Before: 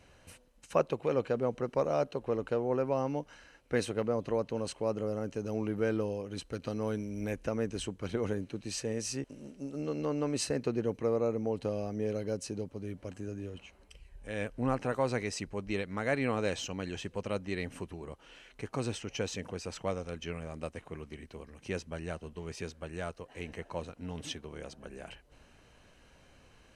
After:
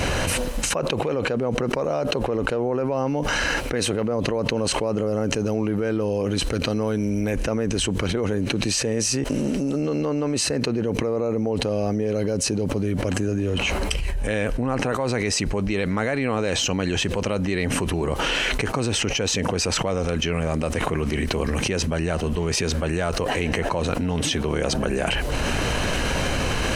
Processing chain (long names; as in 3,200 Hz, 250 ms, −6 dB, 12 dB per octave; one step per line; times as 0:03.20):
envelope flattener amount 100%